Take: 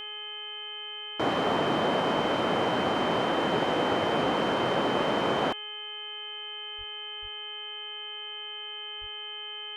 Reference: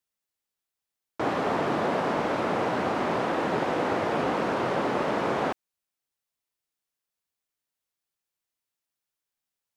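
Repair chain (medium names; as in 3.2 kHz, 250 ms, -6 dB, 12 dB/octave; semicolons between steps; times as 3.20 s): de-hum 420.3 Hz, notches 7; band-stop 3.1 kHz, Q 30; 6.77–6.89 s: high-pass 140 Hz 24 dB/octave; 7.21–7.33 s: high-pass 140 Hz 24 dB/octave; 9.00–9.12 s: high-pass 140 Hz 24 dB/octave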